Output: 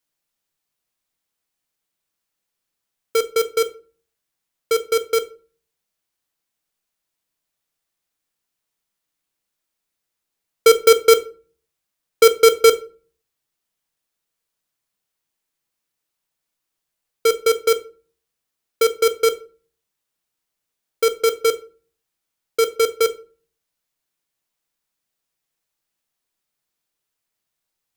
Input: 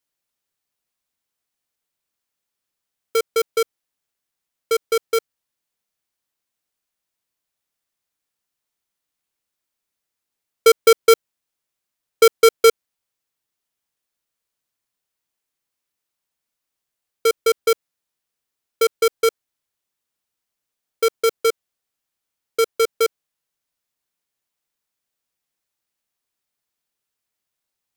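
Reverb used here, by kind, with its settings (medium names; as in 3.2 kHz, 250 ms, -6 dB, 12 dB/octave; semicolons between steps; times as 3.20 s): simulated room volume 270 m³, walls furnished, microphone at 0.65 m; trim +1 dB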